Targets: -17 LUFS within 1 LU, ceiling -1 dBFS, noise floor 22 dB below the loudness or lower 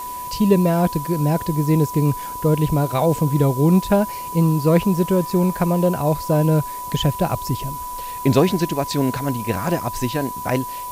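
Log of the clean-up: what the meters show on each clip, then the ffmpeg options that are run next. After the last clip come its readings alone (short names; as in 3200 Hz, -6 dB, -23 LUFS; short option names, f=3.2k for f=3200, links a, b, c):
steady tone 990 Hz; tone level -28 dBFS; noise floor -30 dBFS; noise floor target -42 dBFS; loudness -20.0 LUFS; peak -1.5 dBFS; loudness target -17.0 LUFS
-> -af "bandreject=f=990:w=30"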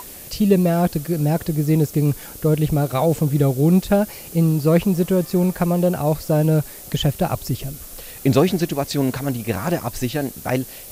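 steady tone none; noise floor -38 dBFS; noise floor target -42 dBFS
-> -af "afftdn=nr=6:nf=-38"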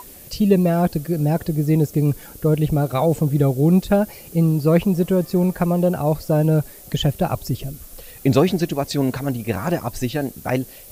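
noise floor -42 dBFS; loudness -20.0 LUFS; peak -2.0 dBFS; loudness target -17.0 LUFS
-> -af "volume=3dB,alimiter=limit=-1dB:level=0:latency=1"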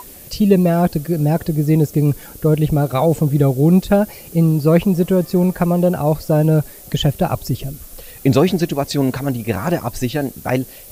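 loudness -17.0 LUFS; peak -1.0 dBFS; noise floor -39 dBFS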